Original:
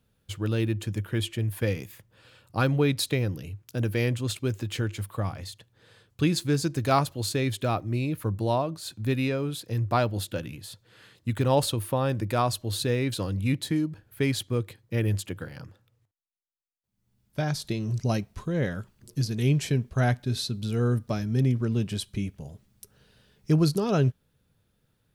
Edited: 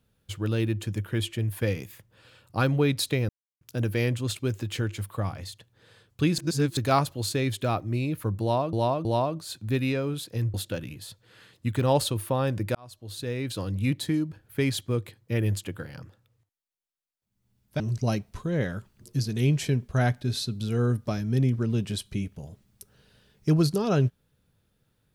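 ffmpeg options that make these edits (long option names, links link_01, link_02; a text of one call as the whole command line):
ffmpeg -i in.wav -filter_complex "[0:a]asplit=10[link_01][link_02][link_03][link_04][link_05][link_06][link_07][link_08][link_09][link_10];[link_01]atrim=end=3.29,asetpts=PTS-STARTPTS,afade=type=out:start_time=3.286:duration=0.004:curve=hsin[link_11];[link_02]atrim=start=3.29:end=3.61,asetpts=PTS-STARTPTS,volume=0[link_12];[link_03]atrim=start=3.61:end=6.382,asetpts=PTS-STARTPTS,afade=type=in:duration=0.004:curve=hsin[link_13];[link_04]atrim=start=6.378:end=6.772,asetpts=PTS-STARTPTS,areverse[link_14];[link_05]atrim=start=6.768:end=8.732[link_15];[link_06]atrim=start=8.408:end=8.732[link_16];[link_07]atrim=start=8.408:end=9.902[link_17];[link_08]atrim=start=10.158:end=12.37,asetpts=PTS-STARTPTS,afade=type=out:start_time=2.208:duration=0.004:curve=hsin[link_18];[link_09]atrim=start=12.37:end=17.422,asetpts=PTS-STARTPTS,afade=type=in:duration=1.06[link_19];[link_10]atrim=start=17.818[link_20];[link_11][link_12][link_13]concat=n=3:v=0:a=1[link_21];[link_21][link_14]acrossfade=duration=0.004:curve1=hsin:curve2=hsin[link_22];[link_22][link_15]acrossfade=duration=0.004:curve1=hsin:curve2=hsin[link_23];[link_23][link_16]acrossfade=duration=0.004:curve1=hsin:curve2=hsin[link_24];[link_24][link_17]acrossfade=duration=0.004:curve1=hsin:curve2=hsin[link_25];[link_18][link_19]concat=n=2:v=0:a=1[link_26];[link_25][link_26]acrossfade=duration=0.004:curve1=hsin:curve2=hsin[link_27];[link_27][link_20]acrossfade=duration=0.004:curve1=hsin:curve2=hsin" out.wav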